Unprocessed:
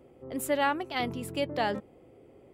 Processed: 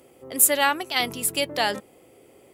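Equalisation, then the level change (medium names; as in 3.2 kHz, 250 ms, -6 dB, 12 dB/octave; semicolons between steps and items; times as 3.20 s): tilt EQ +2.5 dB/octave; peaking EQ 11 kHz +8.5 dB 2 oct; +5.0 dB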